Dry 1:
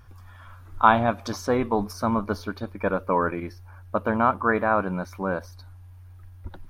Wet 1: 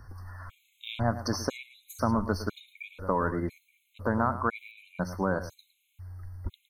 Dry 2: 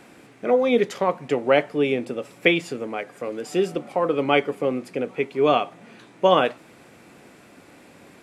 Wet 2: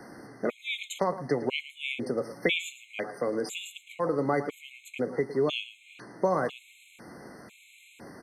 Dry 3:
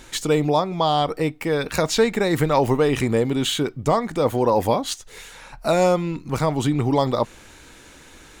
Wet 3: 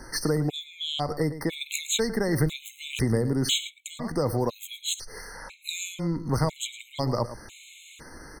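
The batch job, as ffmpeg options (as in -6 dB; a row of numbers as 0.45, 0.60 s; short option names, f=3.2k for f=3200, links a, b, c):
-filter_complex "[0:a]acrossover=split=140|3000[a][b][c];[b]acompressor=threshold=-27dB:ratio=5[d];[a][d][c]amix=inputs=3:normalize=0,asplit=2[e][f];[f]adelay=110.8,volume=-13dB,highshelf=f=4k:g=-2.49[g];[e][g]amix=inputs=2:normalize=0,afftfilt=real='re*gt(sin(2*PI*1*pts/sr)*(1-2*mod(floor(b*sr/1024/2100),2)),0)':imag='im*gt(sin(2*PI*1*pts/sr)*(1-2*mod(floor(b*sr/1024/2100),2)),0)':win_size=1024:overlap=0.75,volume=2.5dB"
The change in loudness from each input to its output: -6.5, -8.0, -7.0 LU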